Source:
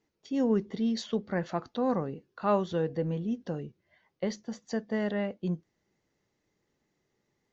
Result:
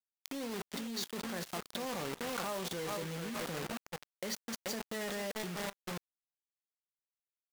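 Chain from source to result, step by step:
in parallel at −10 dB: wrap-around overflow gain 19 dB
on the sum: repeating echo 431 ms, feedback 31%, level −11 dB
brickwall limiter −23 dBFS, peak gain reduction 9 dB
high-pass filter 79 Hz 6 dB per octave
high-shelf EQ 4,200 Hz +4 dB
on a send at −14 dB: convolution reverb RT60 0.35 s, pre-delay 5 ms
on the sum: bit reduction 6 bits
output level in coarse steps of 19 dB
low-shelf EQ 420 Hz −7.5 dB
one half of a high-frequency compander encoder only
level +3 dB

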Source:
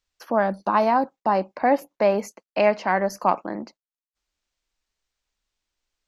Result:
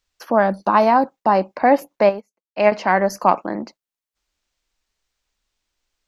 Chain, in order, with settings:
0:02.09–0:02.72: expander for the loud parts 2.5 to 1, over −38 dBFS
level +5 dB

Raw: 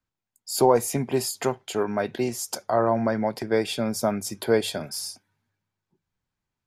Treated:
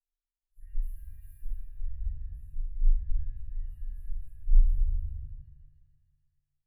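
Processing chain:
band-splitting scrambler in four parts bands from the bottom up 2143
low-pass that shuts in the quiet parts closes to 1,500 Hz, open at −22 dBFS
inverse Chebyshev band-stop filter 160–6,000 Hz, stop band 70 dB
flat-topped bell 670 Hz +11 dB 3 octaves
automatic gain control gain up to 7.5 dB
RIAA equalisation playback
delay with a band-pass on its return 149 ms, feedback 76%, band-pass 850 Hz, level −5.5 dB
reverb with rising layers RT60 1.4 s, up +7 semitones, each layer −8 dB, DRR −7.5 dB
level −7 dB

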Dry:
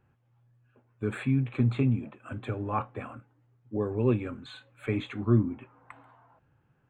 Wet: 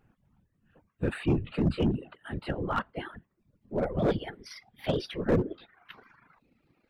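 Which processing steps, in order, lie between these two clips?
pitch glide at a constant tempo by +8 semitones starting unshifted
random phases in short frames
in parallel at −4.5 dB: wave folding −23.5 dBFS
on the sum: reverb reduction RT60 0.63 s
level −1.5 dB

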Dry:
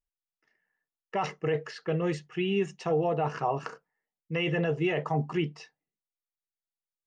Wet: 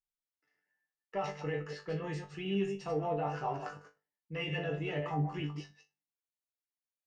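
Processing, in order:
delay that plays each chunk backwards 102 ms, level −6 dB
harmonic generator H 6 −36 dB, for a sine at −14 dBFS
resonators tuned to a chord G2 fifth, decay 0.22 s
level +2.5 dB

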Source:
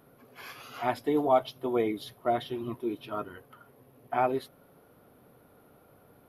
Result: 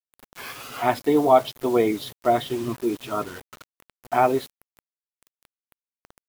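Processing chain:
bit reduction 8 bits
level +7.5 dB

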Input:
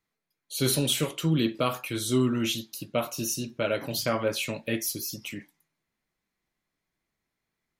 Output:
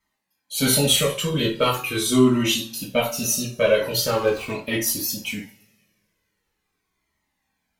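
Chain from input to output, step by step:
0:04.06–0:04.51: running median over 25 samples
harmonic generator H 4 −27 dB, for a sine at −12 dBFS
coupled-rooms reverb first 0.3 s, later 1.8 s, from −28 dB, DRR −4.5 dB
flanger whose copies keep moving one way falling 0.42 Hz
level +7 dB

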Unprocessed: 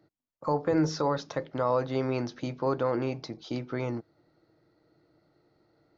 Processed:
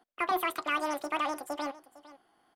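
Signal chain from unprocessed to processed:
in parallel at −12 dB: soft clipping −33 dBFS, distortion −5 dB
on the sum: single-tap delay 1,065 ms −18 dB
wrong playback speed 33 rpm record played at 78 rpm
level −3.5 dB

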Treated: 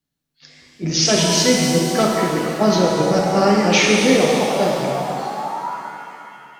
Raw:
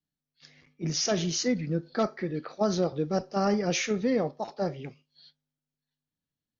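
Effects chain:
sound drawn into the spectrogram rise, 0:03.74–0:05.71, 400–990 Hz −38 dBFS
dynamic equaliser 2,800 Hz, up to +7 dB, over −48 dBFS, Q 1.1
reverb with rising layers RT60 2.7 s, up +7 semitones, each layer −8 dB, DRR −1.5 dB
level +7.5 dB

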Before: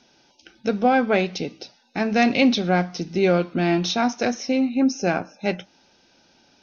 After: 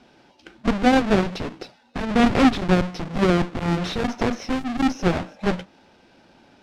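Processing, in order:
each half-wave held at its own peak
harmonic generator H 5 −31 dB, 6 −15 dB, 7 −7 dB, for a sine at −5.5 dBFS
Bessel low-pass filter 3,300 Hz, order 2
level −5 dB

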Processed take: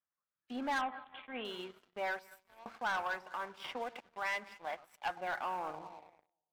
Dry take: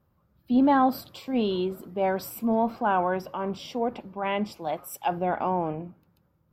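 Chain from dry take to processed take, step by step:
0:02.19–0:02.66: first difference
delay that swaps between a low-pass and a high-pass 102 ms, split 920 Hz, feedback 60%, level −12.5 dB
band-pass filter sweep 1,800 Hz → 760 Hz, 0:05.53–0:06.07
leveller curve on the samples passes 3
transient designer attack +2 dB, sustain −6 dB
0:00.81–0:01.45: elliptic low-pass filter 3,400 Hz, stop band 40 dB
0:03.64–0:04.09: multiband upward and downward compressor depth 70%
level −8 dB

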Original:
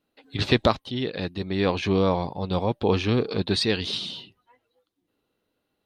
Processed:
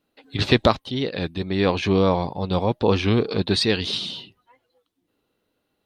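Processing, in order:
wow of a warped record 33 1/3 rpm, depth 100 cents
level +3 dB

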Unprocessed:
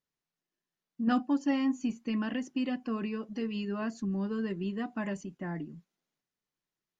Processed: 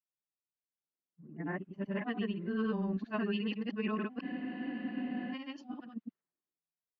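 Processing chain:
played backwards from end to start
high-pass filter 120 Hz 6 dB per octave
low-pass that shuts in the quiet parts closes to 870 Hz, open at −24.5 dBFS
low-pass filter 3,600 Hz 24 dB per octave
high-shelf EQ 2,400 Hz +9.5 dB
compressor whose output falls as the input rises −33 dBFS, ratio −0.5
granular cloud, pitch spread up and down by 0 semitones
frozen spectrum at 0:04.24, 1.08 s
multiband upward and downward expander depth 40%

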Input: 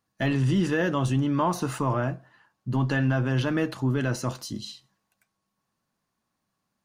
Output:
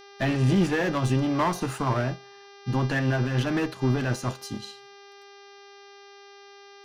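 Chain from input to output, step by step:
asymmetric clip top −28 dBFS
hum with harmonics 400 Hz, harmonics 15, −44 dBFS −4 dB per octave
expander for the loud parts 1.5 to 1, over −42 dBFS
level +4.5 dB

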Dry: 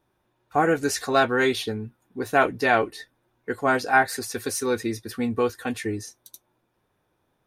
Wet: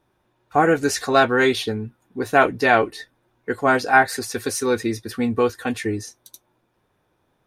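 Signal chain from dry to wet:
high-shelf EQ 11,000 Hz −6 dB
level +4 dB

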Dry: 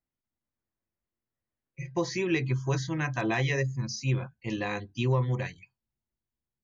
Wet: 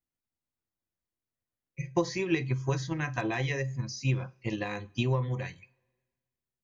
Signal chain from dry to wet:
coupled-rooms reverb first 0.29 s, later 1.7 s, from −26 dB, DRR 13.5 dB
transient designer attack +8 dB, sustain +3 dB
level −4.5 dB

